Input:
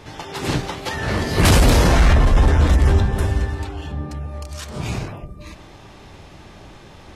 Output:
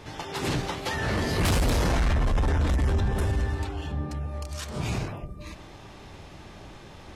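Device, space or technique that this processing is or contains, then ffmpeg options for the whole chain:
soft clipper into limiter: -af "asoftclip=type=tanh:threshold=-10.5dB,alimiter=limit=-16dB:level=0:latency=1:release=13,volume=-3dB"

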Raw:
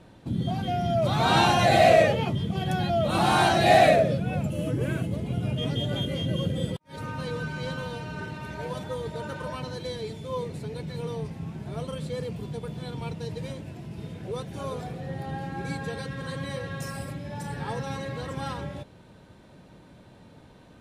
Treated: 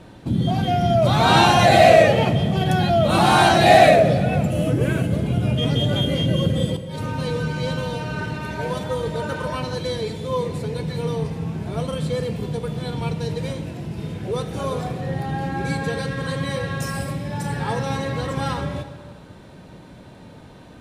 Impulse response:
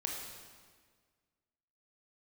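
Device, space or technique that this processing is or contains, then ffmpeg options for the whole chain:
ducked reverb: -filter_complex "[0:a]asettb=1/sr,asplit=3[link_01][link_02][link_03];[link_01]atrim=end=6.634[link_04];[link_02]atrim=start=6.63:end=7.99,asetpts=PTS-STARTPTS,afade=type=in:duration=0.004:curve=qsin,afade=type=out:start_time=1.356:duration=0.004:curve=qsin,equalizer=frequency=1400:width=1.5:gain=-5[link_05];[link_03]atrim=start=7.986[link_06];[link_04][link_05]acrossfade=duration=0.004:curve1=hsin:curve2=qsin[link_07];[link_07][link_06]acrossfade=duration=0.004:curve1=qsin:curve2=hsin,asplit=3[link_08][link_09][link_10];[1:a]atrim=start_sample=2205[link_11];[link_09][link_11]afir=irnorm=-1:irlink=0[link_12];[link_10]apad=whole_len=917630[link_13];[link_12][link_13]sidechaincompress=threshold=-24dB:ratio=8:attack=16:release=110,volume=-5.5dB[link_14];[link_08][link_14]amix=inputs=2:normalize=0,volume=4.5dB"

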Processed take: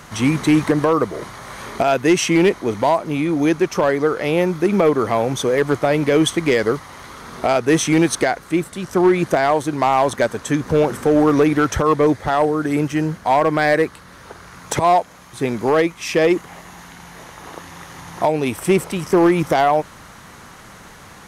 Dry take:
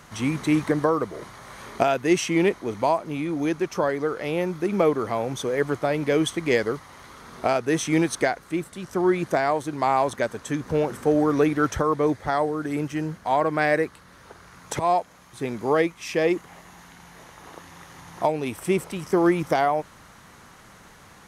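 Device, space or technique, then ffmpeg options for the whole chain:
limiter into clipper: -af "alimiter=limit=-12.5dB:level=0:latency=1:release=102,asoftclip=type=hard:threshold=-16dB,volume=8dB"

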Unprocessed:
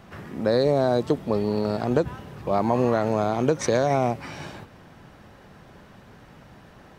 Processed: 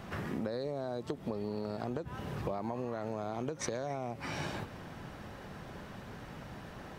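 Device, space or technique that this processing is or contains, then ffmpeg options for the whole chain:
serial compression, leveller first: -af "acompressor=threshold=-23dB:ratio=3,acompressor=threshold=-35dB:ratio=10,volume=2dB"

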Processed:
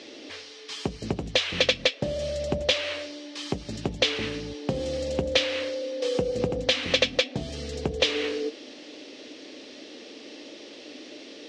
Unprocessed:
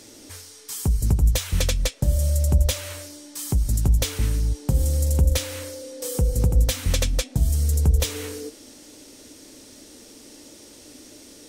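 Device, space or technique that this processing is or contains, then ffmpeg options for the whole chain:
phone earpiece: -af "highpass=340,equalizer=frequency=930:width_type=q:width=4:gain=-7,equalizer=frequency=1400:width_type=q:width=4:gain=-6,equalizer=frequency=2800:width_type=q:width=4:gain=3,lowpass=frequency=4200:width=0.5412,lowpass=frequency=4200:width=1.3066,volume=7.5dB"

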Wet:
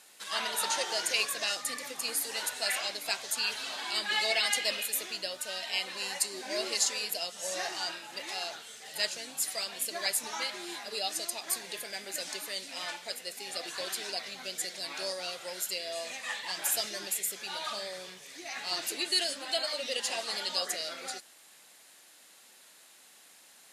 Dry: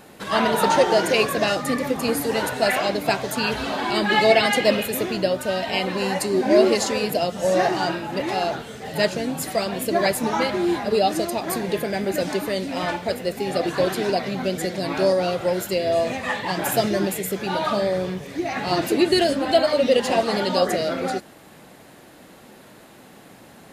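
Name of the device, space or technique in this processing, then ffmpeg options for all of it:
piezo pickup straight into a mixer: -af "lowpass=8900,aderivative,volume=2dB"

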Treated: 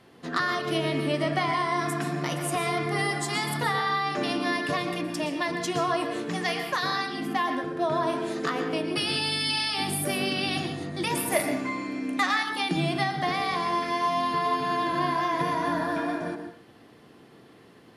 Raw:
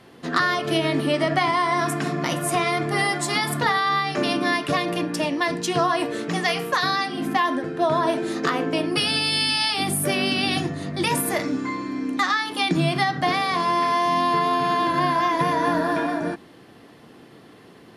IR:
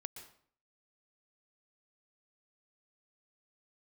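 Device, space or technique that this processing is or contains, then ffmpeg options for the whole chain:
bathroom: -filter_complex "[1:a]atrim=start_sample=2205[link_01];[0:a][link_01]afir=irnorm=-1:irlink=0,asettb=1/sr,asplit=3[link_02][link_03][link_04];[link_02]atrim=end=11.324[link_05];[link_03]atrim=start=11.32:end=12.43,asetpts=PTS-STARTPTS,afade=type=in:duration=0.004:curve=qsin,afade=type=out:start_time=1.106:duration=0.004:curve=qsin,equalizer=frequency=630:width_type=o:width=0.67:gain=8,equalizer=frequency=2500:width_type=o:width=0.67:gain=8,equalizer=frequency=10000:width_type=o:width=0.67:gain=9[link_06];[link_04]atrim=start=12.426[link_07];[link_05][link_06]acrossfade=duration=0.004:curve1=hsin:curve2=qsin[link_08];[link_08][link_07]acrossfade=duration=0.004:curve1=qsin:curve2=hsin,volume=-1.5dB"

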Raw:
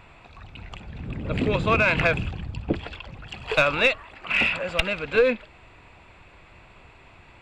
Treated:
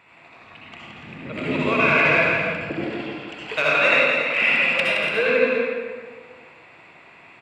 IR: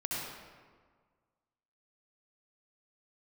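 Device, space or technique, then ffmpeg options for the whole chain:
stadium PA: -filter_complex "[0:a]highpass=210,equalizer=frequency=2100:width_type=o:width=0.53:gain=6.5,aecho=1:1:169.1|288.6:0.501|0.355[link_01];[1:a]atrim=start_sample=2205[link_02];[link_01][link_02]afir=irnorm=-1:irlink=0,volume=-3dB"

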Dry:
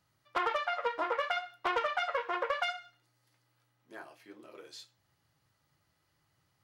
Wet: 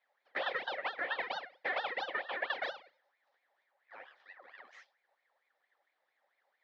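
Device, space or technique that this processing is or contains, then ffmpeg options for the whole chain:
voice changer toy: -filter_complex "[0:a]aeval=exprs='val(0)*sin(2*PI*1500*n/s+1500*0.55/4.4*sin(2*PI*4.4*n/s))':channel_layout=same,highpass=470,equalizer=frequency=540:width_type=q:width=4:gain=10,equalizer=frequency=770:width_type=q:width=4:gain=8,equalizer=frequency=1800:width_type=q:width=4:gain=10,equalizer=frequency=2700:width_type=q:width=4:gain=-7,lowpass=frequency=4300:width=0.5412,lowpass=frequency=4300:width=1.3066,asettb=1/sr,asplit=3[link_01][link_02][link_03];[link_01]atrim=end=2.094[link_04];[link_02]atrim=start=2.09:end=2.54,asetpts=PTS-STARTPTS,afade=type=in:duration=0.004:curve=qsin,afade=type=out:start_time=0.446:duration=0.004:curve=qsin,highpass=170[link_05];[link_03]atrim=start=2.536[link_06];[link_04][link_05]acrossfade=duration=0.004:curve1=hsin:curve2=qsin[link_07];[link_07][link_06]acrossfade=duration=0.004:curve1=qsin:curve2=hsin,volume=-4.5dB"

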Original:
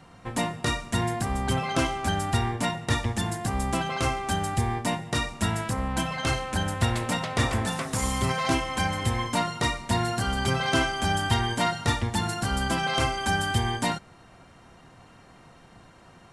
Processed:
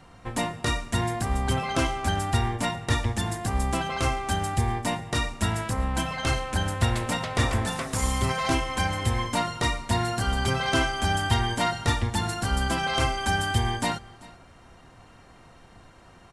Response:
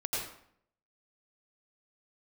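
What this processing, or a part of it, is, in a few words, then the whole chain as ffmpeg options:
low shelf boost with a cut just above: -af "lowshelf=frequency=92:gain=7,equalizer=frequency=160:width_type=o:width=0.97:gain=-4.5,aecho=1:1:390:0.0841"

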